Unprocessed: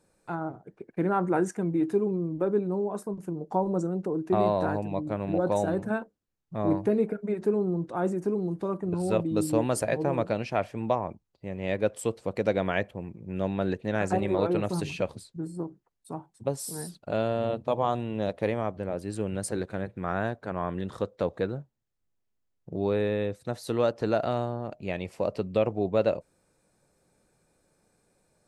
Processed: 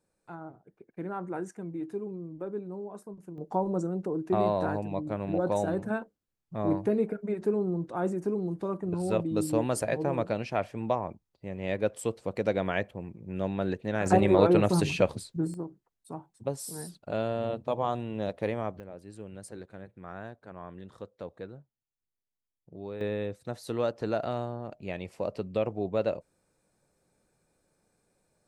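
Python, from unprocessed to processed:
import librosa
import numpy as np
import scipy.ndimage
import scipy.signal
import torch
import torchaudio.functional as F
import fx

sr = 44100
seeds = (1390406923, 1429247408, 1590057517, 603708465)

y = fx.gain(x, sr, db=fx.steps((0.0, -10.0), (3.38, -2.0), (14.06, 5.0), (15.54, -3.0), (18.8, -12.5), (23.01, -4.0)))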